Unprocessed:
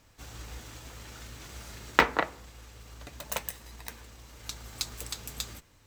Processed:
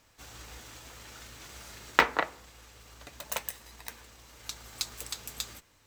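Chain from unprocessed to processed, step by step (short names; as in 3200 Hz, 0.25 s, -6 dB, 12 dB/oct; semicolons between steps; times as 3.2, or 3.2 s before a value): low shelf 320 Hz -7.5 dB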